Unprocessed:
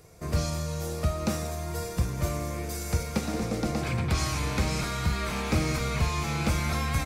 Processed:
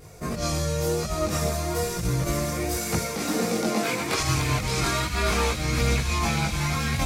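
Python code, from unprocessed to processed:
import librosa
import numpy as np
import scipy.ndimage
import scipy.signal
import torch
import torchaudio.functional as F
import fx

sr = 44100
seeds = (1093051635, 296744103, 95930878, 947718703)

y = fx.highpass(x, sr, hz=fx.line((2.75, 140.0), (4.18, 310.0)), slope=12, at=(2.75, 4.18), fade=0.02)
y = fx.over_compress(y, sr, threshold_db=-30.0, ratio=-1.0)
y = fx.chorus_voices(y, sr, voices=2, hz=0.34, base_ms=20, depth_ms=3.5, mix_pct=55)
y = fx.vibrato(y, sr, rate_hz=1.2, depth_cents=27.0)
y = fx.echo_wet_highpass(y, sr, ms=568, feedback_pct=67, hz=2400.0, wet_db=-6.0)
y = y * librosa.db_to_amplitude(8.5)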